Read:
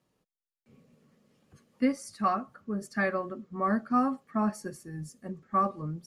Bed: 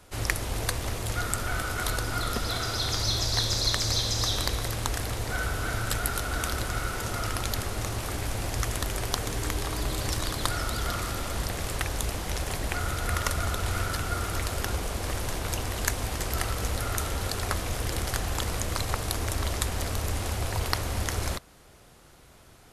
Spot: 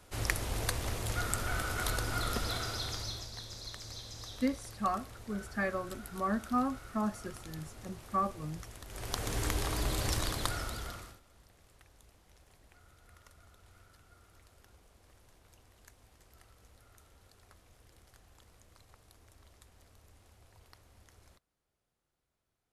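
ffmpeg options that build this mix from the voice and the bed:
-filter_complex "[0:a]adelay=2600,volume=0.562[s0];[1:a]volume=3.76,afade=t=out:st=2.39:d=0.92:silence=0.188365,afade=t=in:st=8.87:d=0.51:silence=0.158489,afade=t=out:st=10.17:d=1.03:silence=0.0375837[s1];[s0][s1]amix=inputs=2:normalize=0"

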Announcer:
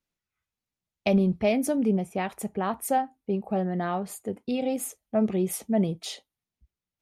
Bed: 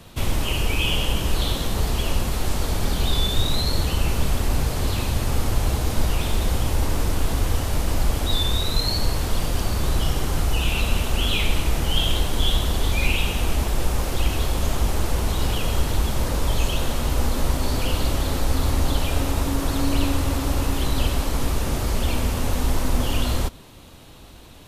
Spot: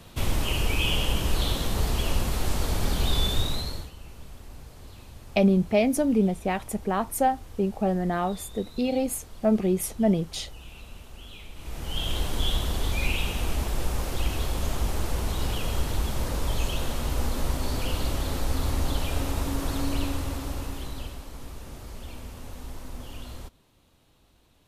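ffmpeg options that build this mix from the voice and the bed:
-filter_complex "[0:a]adelay=4300,volume=1.26[s0];[1:a]volume=5.01,afade=t=out:st=3.29:d=0.62:silence=0.105925,afade=t=in:st=11.55:d=0.71:silence=0.141254,afade=t=out:st=19.73:d=1.48:silence=0.251189[s1];[s0][s1]amix=inputs=2:normalize=0"

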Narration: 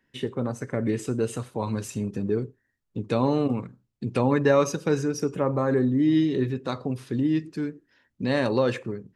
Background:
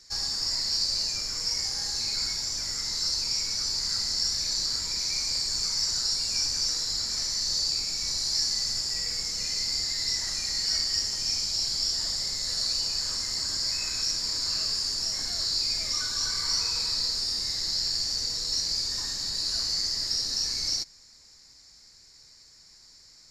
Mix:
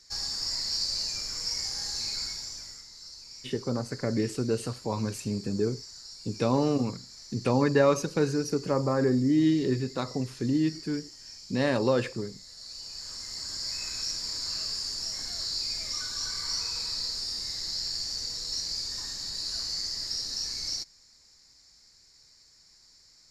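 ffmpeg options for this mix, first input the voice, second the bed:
-filter_complex "[0:a]adelay=3300,volume=0.794[s0];[1:a]volume=3.35,afade=t=out:st=2.06:d=0.81:silence=0.177828,afade=t=in:st=12.57:d=1.26:silence=0.211349[s1];[s0][s1]amix=inputs=2:normalize=0"

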